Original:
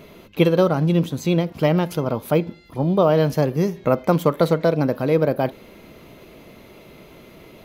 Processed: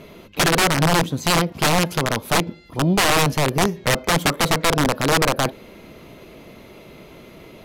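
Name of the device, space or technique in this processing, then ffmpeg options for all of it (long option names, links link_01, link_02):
overflowing digital effects unit: -af "aeval=exprs='(mod(4.47*val(0)+1,2)-1)/4.47':channel_layout=same,lowpass=13000,volume=2dB"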